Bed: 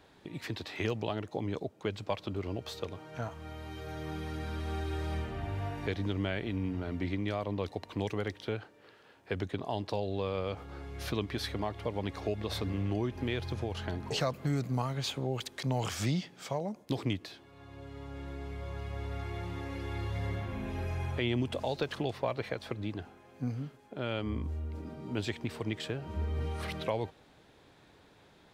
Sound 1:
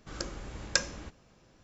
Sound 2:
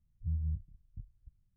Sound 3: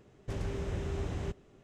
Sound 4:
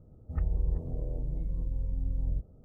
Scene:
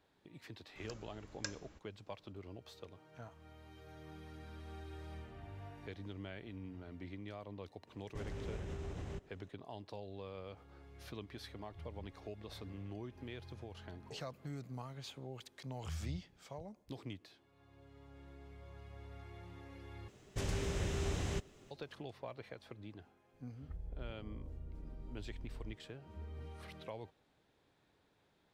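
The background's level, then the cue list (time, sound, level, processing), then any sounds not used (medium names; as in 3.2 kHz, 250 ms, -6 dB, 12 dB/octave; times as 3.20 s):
bed -14 dB
0.69 s: add 1 -15.5 dB
7.87 s: add 3 -5 dB + peak limiter -30 dBFS
11.51 s: add 2 -18 dB
15.61 s: add 2 -8 dB + high-pass 67 Hz
20.08 s: replace with 3 -2 dB + treble shelf 2.4 kHz +11.5 dB
23.33 s: add 4 -17 dB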